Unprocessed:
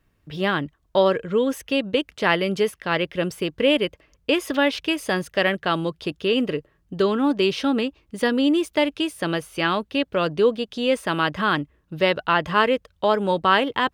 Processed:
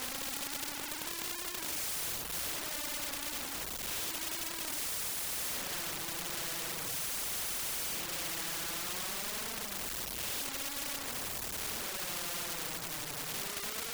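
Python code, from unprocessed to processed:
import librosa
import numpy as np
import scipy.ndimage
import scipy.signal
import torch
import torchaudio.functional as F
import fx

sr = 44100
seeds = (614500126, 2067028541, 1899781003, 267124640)

y = x + 0.5 * 10.0 ** (-23.5 / 20.0) * np.sign(x)
y = fx.leveller(y, sr, passes=3)
y = fx.paulstretch(y, sr, seeds[0], factor=6.7, window_s=0.05, from_s=8.38)
y = np.clip(y, -10.0 ** (-18.5 / 20.0), 10.0 ** (-18.5 / 20.0))
y = fx.dereverb_blind(y, sr, rt60_s=0.53)
y = fx.spectral_comp(y, sr, ratio=4.0)
y = y * librosa.db_to_amplitude(-6.5)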